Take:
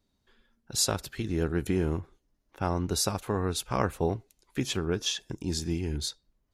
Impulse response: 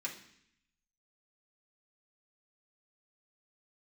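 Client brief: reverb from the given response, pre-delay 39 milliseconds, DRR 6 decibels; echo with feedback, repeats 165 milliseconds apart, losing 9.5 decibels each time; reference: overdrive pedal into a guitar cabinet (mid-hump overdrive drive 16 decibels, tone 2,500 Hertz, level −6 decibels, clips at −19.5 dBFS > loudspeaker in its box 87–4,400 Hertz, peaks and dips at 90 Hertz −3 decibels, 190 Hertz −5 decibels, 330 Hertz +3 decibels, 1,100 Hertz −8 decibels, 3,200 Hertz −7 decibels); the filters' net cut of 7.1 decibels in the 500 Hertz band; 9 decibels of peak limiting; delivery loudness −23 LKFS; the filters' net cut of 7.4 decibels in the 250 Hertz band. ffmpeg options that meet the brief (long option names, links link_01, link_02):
-filter_complex "[0:a]equalizer=frequency=250:width_type=o:gain=-8,equalizer=frequency=500:width_type=o:gain=-7,alimiter=limit=-22dB:level=0:latency=1,aecho=1:1:165|330|495|660:0.335|0.111|0.0365|0.012,asplit=2[link_01][link_02];[1:a]atrim=start_sample=2205,adelay=39[link_03];[link_02][link_03]afir=irnorm=-1:irlink=0,volume=-7dB[link_04];[link_01][link_04]amix=inputs=2:normalize=0,asplit=2[link_05][link_06];[link_06]highpass=frequency=720:poles=1,volume=16dB,asoftclip=type=tanh:threshold=-19.5dB[link_07];[link_05][link_07]amix=inputs=2:normalize=0,lowpass=frequency=2500:poles=1,volume=-6dB,highpass=87,equalizer=frequency=90:width_type=q:width=4:gain=-3,equalizer=frequency=190:width_type=q:width=4:gain=-5,equalizer=frequency=330:width_type=q:width=4:gain=3,equalizer=frequency=1100:width_type=q:width=4:gain=-8,equalizer=frequency=3200:width_type=q:width=4:gain=-7,lowpass=frequency=4400:width=0.5412,lowpass=frequency=4400:width=1.3066,volume=12.5dB"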